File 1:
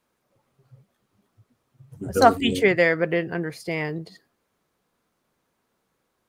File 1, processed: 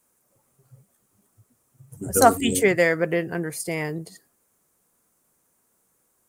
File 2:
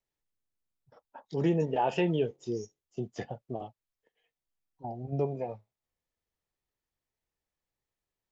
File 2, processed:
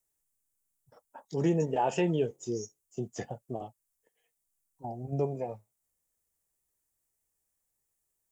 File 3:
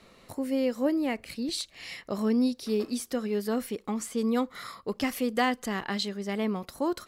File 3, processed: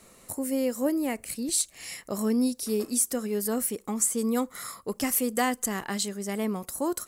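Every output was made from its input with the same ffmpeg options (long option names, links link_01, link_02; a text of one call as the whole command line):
ffmpeg -i in.wav -af "highshelf=frequency=5800:width_type=q:width=1.5:gain=13" out.wav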